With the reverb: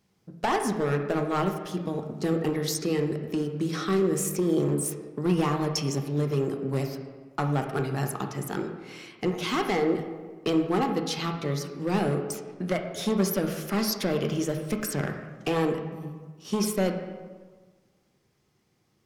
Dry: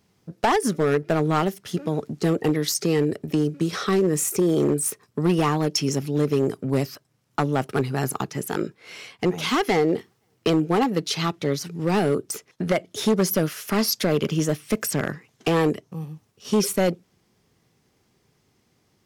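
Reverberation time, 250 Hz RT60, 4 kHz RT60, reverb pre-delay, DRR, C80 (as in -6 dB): 1.4 s, 1.5 s, 0.95 s, 3 ms, 4.0 dB, 8.5 dB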